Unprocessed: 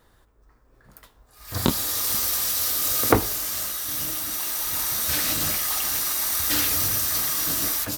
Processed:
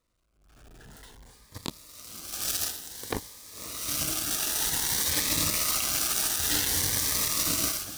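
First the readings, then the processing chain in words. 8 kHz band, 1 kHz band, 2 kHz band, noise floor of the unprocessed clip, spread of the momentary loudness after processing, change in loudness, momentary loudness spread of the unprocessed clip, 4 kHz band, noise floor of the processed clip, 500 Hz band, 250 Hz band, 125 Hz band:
−2.0 dB, −7.0 dB, −3.5 dB, −60 dBFS, 16 LU, −4.0 dB, 6 LU, −2.0 dB, −64 dBFS, −9.5 dB, −7.5 dB, −6.5 dB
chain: converter with a step at zero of −26 dBFS
low-pass filter 11,000 Hz 12 dB per octave
automatic gain control gain up to 9.5 dB
brickwall limiter −9 dBFS, peak gain reduction 8 dB
power curve on the samples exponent 3
feedback delay with all-pass diffusion 558 ms, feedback 59%, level −14 dB
phaser whose notches keep moving one way rising 0.54 Hz

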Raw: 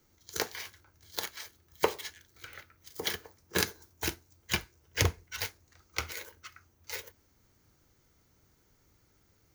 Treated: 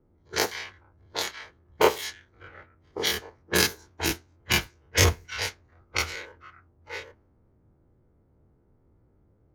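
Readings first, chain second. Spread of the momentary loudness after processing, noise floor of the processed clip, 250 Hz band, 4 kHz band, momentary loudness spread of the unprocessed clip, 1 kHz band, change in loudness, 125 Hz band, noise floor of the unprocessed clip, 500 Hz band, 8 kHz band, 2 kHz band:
16 LU, −65 dBFS, +8.0 dB, +8.0 dB, 18 LU, +8.5 dB, +8.0 dB, +7.0 dB, −69 dBFS, +8.5 dB, +7.5 dB, +8.0 dB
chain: every bin's largest magnitude spread in time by 60 ms
low-pass that shuts in the quiet parts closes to 650 Hz, open at −25 dBFS
level +2.5 dB

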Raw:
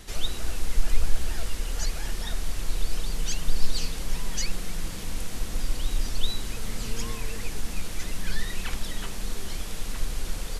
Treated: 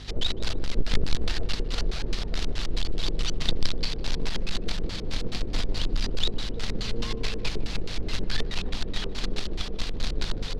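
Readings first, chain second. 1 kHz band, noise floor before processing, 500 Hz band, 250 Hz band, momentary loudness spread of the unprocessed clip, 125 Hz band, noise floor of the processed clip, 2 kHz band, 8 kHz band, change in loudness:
+0.5 dB, −34 dBFS, +5.5 dB, +4.5 dB, 4 LU, +2.0 dB, −34 dBFS, +1.5 dB, −6.5 dB, +2.0 dB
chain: in parallel at −2.5 dB: compressor whose output falls as the input rises −22 dBFS, ratio −1
on the sum: mains hum 50 Hz, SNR 19 dB
log-companded quantiser 4 bits
auto-filter low-pass square 4.7 Hz 420–4,200 Hz
tape delay 152 ms, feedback 82%, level −16 dB, low-pass 1,400 Hz
level −5.5 dB

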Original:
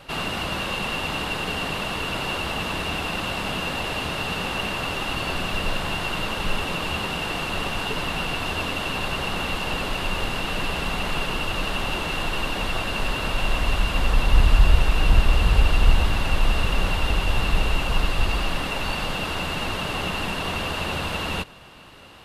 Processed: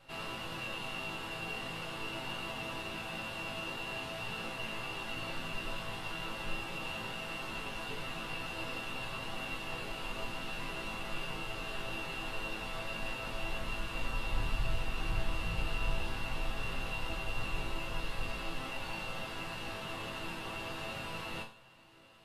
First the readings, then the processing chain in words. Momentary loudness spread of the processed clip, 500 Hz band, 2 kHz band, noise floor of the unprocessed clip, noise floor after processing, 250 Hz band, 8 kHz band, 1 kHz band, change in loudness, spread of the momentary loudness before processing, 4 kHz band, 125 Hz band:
3 LU, −13.0 dB, −12.5 dB, −29 dBFS, −43 dBFS, −14.0 dB, −14.0 dB, −13.5 dB, −14.0 dB, 6 LU, −14.0 dB, −17.0 dB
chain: resonators tuned to a chord A2 minor, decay 0.38 s
level +1 dB

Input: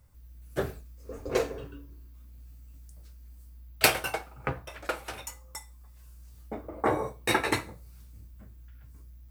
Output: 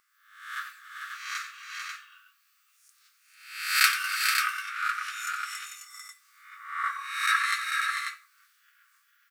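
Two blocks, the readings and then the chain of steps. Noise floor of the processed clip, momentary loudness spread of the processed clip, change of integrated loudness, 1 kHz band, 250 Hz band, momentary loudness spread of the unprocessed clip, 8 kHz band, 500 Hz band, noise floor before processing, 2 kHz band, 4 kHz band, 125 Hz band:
−68 dBFS, 20 LU, +2.5 dB, +3.0 dB, below −40 dB, 21 LU, +3.0 dB, below −40 dB, −51 dBFS, +6.5 dB, +4.5 dB, below −40 dB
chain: peak hold with a rise ahead of every peak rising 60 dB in 0.67 s
low-pass filter 3,600 Hz 6 dB per octave
multi-tap delay 90/280/396/445/541 ms −11.5/−19/−13/−6/−6.5 dB
dynamic equaliser 2,700 Hz, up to −6 dB, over −41 dBFS, Q 1.7
linear-phase brick-wall high-pass 1,100 Hz
level +4 dB

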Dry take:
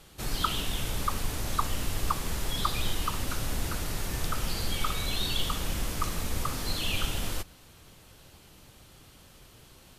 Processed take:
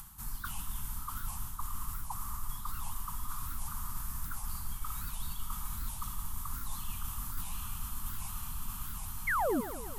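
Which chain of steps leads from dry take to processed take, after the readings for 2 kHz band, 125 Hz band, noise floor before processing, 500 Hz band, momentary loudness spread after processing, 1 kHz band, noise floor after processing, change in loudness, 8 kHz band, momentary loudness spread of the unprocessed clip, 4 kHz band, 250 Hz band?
−4.0 dB, −8.5 dB, −55 dBFS, −2.0 dB, 7 LU, −5.5 dB, −42 dBFS, −7.0 dB, −5.0 dB, 4 LU, −17.5 dB, −5.5 dB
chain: drawn EQ curve 230 Hz 0 dB, 500 Hz −27 dB, 980 Hz +8 dB, 2,300 Hz −7 dB, 4,100 Hz −6 dB, 12,000 Hz +13 dB
feedback delay with all-pass diffusion 709 ms, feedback 47%, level −4.5 dB
reversed playback
downward compressor 12 to 1, threshold −39 dBFS, peak gain reduction 22.5 dB
reversed playback
low-shelf EQ 62 Hz +9.5 dB
sound drawn into the spectrogram fall, 0:09.27–0:09.61, 210–2,300 Hz −31 dBFS
delay with a band-pass on its return 112 ms, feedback 69%, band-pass 680 Hz, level −10.5 dB
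upward compression, threshold −47 dBFS
wow of a warped record 78 rpm, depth 250 cents
level +1 dB

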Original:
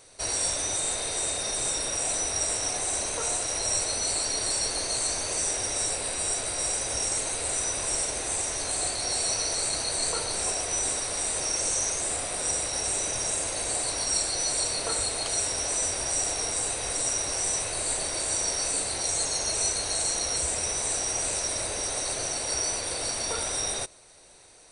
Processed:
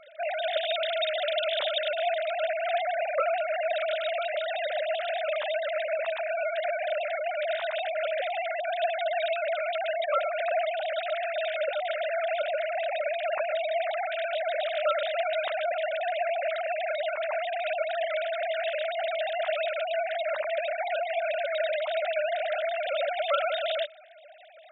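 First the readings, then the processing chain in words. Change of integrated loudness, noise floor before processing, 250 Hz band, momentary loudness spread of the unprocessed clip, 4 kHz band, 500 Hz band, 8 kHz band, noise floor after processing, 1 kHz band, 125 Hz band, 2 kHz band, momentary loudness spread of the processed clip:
−3.0 dB, −33 dBFS, below −30 dB, 2 LU, −5.5 dB, +10.0 dB, below −40 dB, −34 dBFS, +6.5 dB, below −40 dB, +5.0 dB, 3 LU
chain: three sine waves on the formant tracks

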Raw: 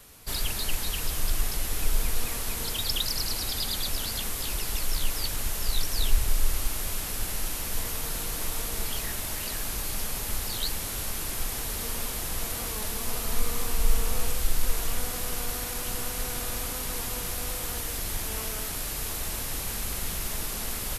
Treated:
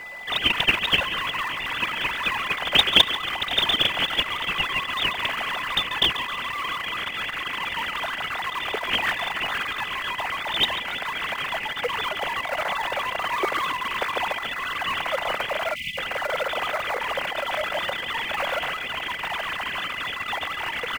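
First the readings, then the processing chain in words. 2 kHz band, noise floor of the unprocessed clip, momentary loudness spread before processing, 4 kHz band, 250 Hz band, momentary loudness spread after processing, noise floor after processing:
+14.5 dB, −33 dBFS, 3 LU, +10.5 dB, +1.5 dB, 8 LU, −33 dBFS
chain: three sine waves on the formant tracks
steady tone 2,000 Hz −34 dBFS
echo with shifted repeats 139 ms, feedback 51%, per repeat −47 Hz, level −13 dB
in parallel at −10.5 dB: sample-rate reduction 2,800 Hz, jitter 20%
on the sum: time-frequency box erased 0:15.75–0:15.98, 260–2,000 Hz
level −1 dB

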